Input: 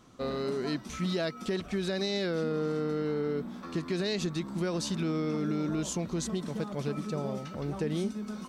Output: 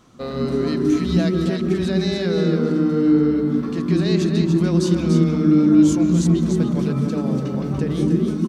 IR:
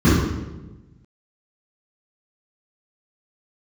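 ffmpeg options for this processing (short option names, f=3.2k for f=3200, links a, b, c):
-filter_complex "[0:a]aecho=1:1:290:0.501,asplit=2[a][b];[1:a]atrim=start_sample=2205,afade=t=out:st=0.18:d=0.01,atrim=end_sample=8379,adelay=130[c];[b][c]afir=irnorm=-1:irlink=0,volume=-28.5dB[d];[a][d]amix=inputs=2:normalize=0,volume=4.5dB"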